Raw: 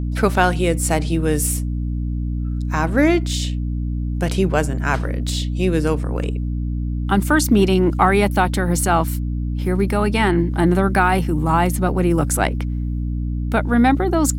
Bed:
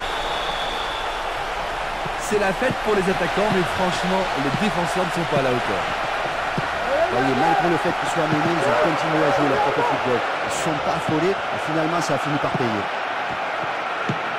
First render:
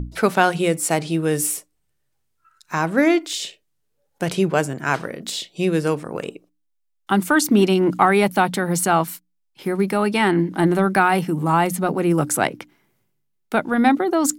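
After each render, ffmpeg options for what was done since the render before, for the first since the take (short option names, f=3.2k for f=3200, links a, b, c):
-af "bandreject=f=60:t=h:w=6,bandreject=f=120:t=h:w=6,bandreject=f=180:t=h:w=6,bandreject=f=240:t=h:w=6,bandreject=f=300:t=h:w=6"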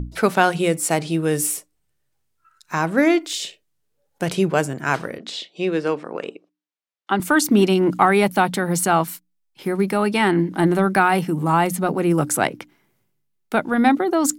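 -filter_complex "[0:a]asettb=1/sr,asplit=3[a][b][c];[a]atrim=end=5.184[d];[b]atrim=start=5.18:end=7.2,asetpts=PTS-STARTPTS,afade=t=in:d=0.004:c=qsin,afade=t=out:st=2.016:d=0.004:c=qsin,highpass=260,lowpass=4.4k[e];[c]atrim=start=7.196[f];[d][e]acrossfade=d=0.004:c1=hsin:c2=qsin[g];[g][f]acrossfade=d=0.004:c1=qsin:c2=hsin"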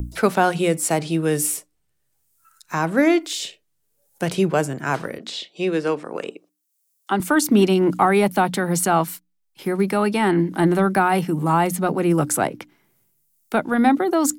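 -filter_complex "[0:a]acrossover=split=250|1200|6900[a][b][c][d];[c]alimiter=limit=-19.5dB:level=0:latency=1:release=51[e];[d]acompressor=mode=upward:threshold=-45dB:ratio=2.5[f];[a][b][e][f]amix=inputs=4:normalize=0"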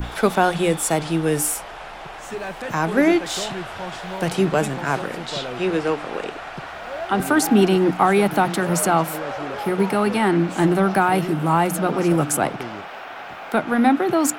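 -filter_complex "[1:a]volume=-10dB[a];[0:a][a]amix=inputs=2:normalize=0"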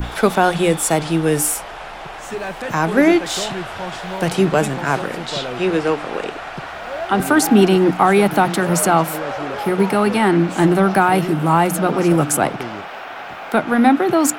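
-af "volume=3.5dB,alimiter=limit=-2dB:level=0:latency=1"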